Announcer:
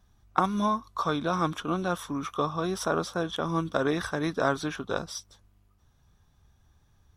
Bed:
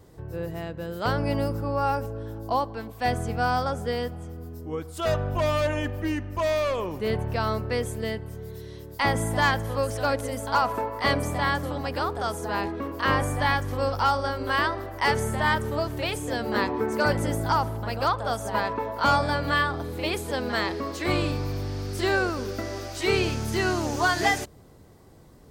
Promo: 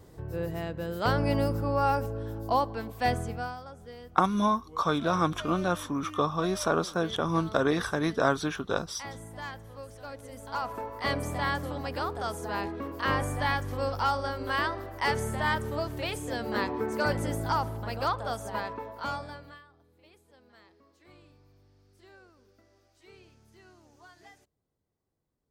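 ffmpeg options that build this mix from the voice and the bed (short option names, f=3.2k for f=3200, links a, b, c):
-filter_complex "[0:a]adelay=3800,volume=1dB[a];[1:a]volume=12.5dB,afade=t=out:st=3.01:d=0.55:silence=0.141254,afade=t=in:st=10.11:d=1.26:silence=0.223872,afade=t=out:st=18.16:d=1.45:silence=0.0446684[b];[a][b]amix=inputs=2:normalize=0"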